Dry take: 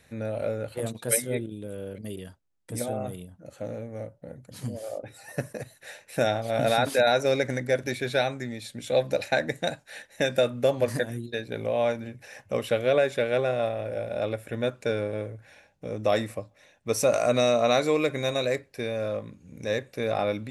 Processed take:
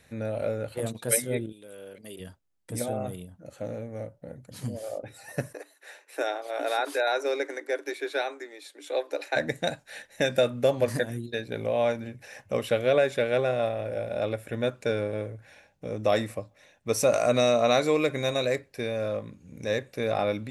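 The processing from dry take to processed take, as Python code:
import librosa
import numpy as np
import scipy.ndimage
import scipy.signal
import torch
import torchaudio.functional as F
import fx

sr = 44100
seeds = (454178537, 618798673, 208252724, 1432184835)

y = fx.highpass(x, sr, hz=fx.line((1.51, 1400.0), (2.19, 540.0)), slope=6, at=(1.51, 2.19), fade=0.02)
y = fx.cheby_ripple_highpass(y, sr, hz=280.0, ripple_db=6, at=(5.53, 9.35), fade=0.02)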